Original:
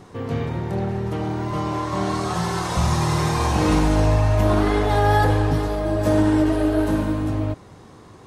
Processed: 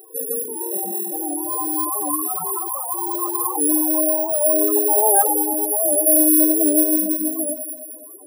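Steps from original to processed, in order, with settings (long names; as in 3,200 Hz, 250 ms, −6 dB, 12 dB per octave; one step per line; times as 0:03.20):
notch filter 690 Hz, Q 13
reverb reduction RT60 0.64 s
high-pass filter 120 Hz 12 dB per octave
three-way crossover with the lows and the highs turned down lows −22 dB, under 250 Hz, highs −14 dB, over 4,200 Hz
mains-hum notches 60/120/180/240/300/360 Hz
in parallel at −2 dB: downward compressor, threshold −33 dBFS, peak gain reduction 15 dB
on the sum: bad sample-rate conversion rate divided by 4×, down none, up zero stuff
on a send: delay that swaps between a low-pass and a high-pass 106 ms, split 1,200 Hz, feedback 74%, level −3.5 dB
on the sum: spectral peaks only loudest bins 16
wow of a warped record 78 rpm, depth 100 cents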